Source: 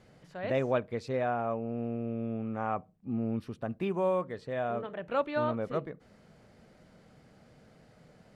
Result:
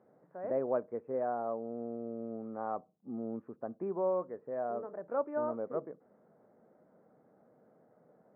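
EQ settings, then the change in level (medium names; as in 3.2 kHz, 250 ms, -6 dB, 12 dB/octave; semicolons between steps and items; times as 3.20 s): Gaussian low-pass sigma 7.1 samples; high-pass 320 Hz 12 dB/octave; distance through air 200 m; 0.0 dB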